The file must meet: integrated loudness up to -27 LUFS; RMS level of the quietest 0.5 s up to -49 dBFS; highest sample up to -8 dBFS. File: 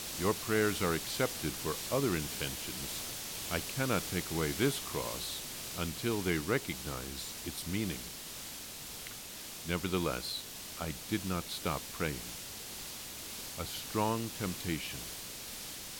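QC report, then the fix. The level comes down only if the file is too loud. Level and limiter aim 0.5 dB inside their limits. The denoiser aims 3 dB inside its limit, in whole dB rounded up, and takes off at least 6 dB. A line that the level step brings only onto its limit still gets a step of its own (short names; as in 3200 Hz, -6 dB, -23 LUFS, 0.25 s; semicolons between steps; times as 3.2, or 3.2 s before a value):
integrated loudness -35.5 LUFS: OK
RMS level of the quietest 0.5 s -46 dBFS: fail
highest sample -16.5 dBFS: OK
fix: denoiser 6 dB, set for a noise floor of -46 dBFS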